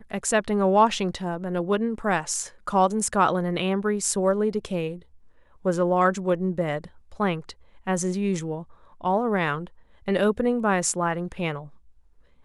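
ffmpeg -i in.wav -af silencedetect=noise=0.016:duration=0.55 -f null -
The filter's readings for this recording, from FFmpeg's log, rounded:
silence_start: 4.99
silence_end: 5.65 | silence_duration: 0.67
silence_start: 11.66
silence_end: 12.45 | silence_duration: 0.78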